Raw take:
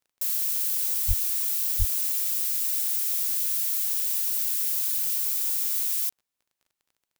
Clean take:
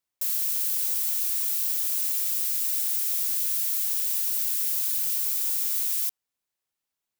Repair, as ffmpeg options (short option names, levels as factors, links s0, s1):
-filter_complex "[0:a]adeclick=t=4,asplit=3[s0][s1][s2];[s0]afade=t=out:st=1.07:d=0.02[s3];[s1]highpass=f=140:w=0.5412,highpass=f=140:w=1.3066,afade=t=in:st=1.07:d=0.02,afade=t=out:st=1.19:d=0.02[s4];[s2]afade=t=in:st=1.19:d=0.02[s5];[s3][s4][s5]amix=inputs=3:normalize=0,asplit=3[s6][s7][s8];[s6]afade=t=out:st=1.78:d=0.02[s9];[s7]highpass=f=140:w=0.5412,highpass=f=140:w=1.3066,afade=t=in:st=1.78:d=0.02,afade=t=out:st=1.9:d=0.02[s10];[s8]afade=t=in:st=1.9:d=0.02[s11];[s9][s10][s11]amix=inputs=3:normalize=0"